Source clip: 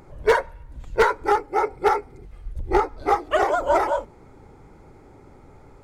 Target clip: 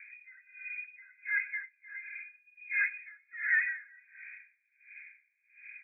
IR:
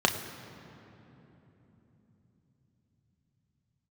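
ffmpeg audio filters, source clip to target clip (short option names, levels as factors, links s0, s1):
-filter_complex "[0:a]asuperstop=centerf=1700:order=8:qfactor=0.87,lowpass=f=2100:t=q:w=0.5098,lowpass=f=2100:t=q:w=0.6013,lowpass=f=2100:t=q:w=0.9,lowpass=f=2100:t=q:w=2.563,afreqshift=-2500,asplit=2[s0][s1];[1:a]atrim=start_sample=2205,asetrate=42777,aresample=44100[s2];[s1][s2]afir=irnorm=-1:irlink=0,volume=0.0473[s3];[s0][s3]amix=inputs=2:normalize=0,alimiter=limit=0.126:level=0:latency=1:release=18,aeval=exprs='val(0)*pow(10,-31*(0.5-0.5*cos(2*PI*1.4*n/s))/20)':c=same"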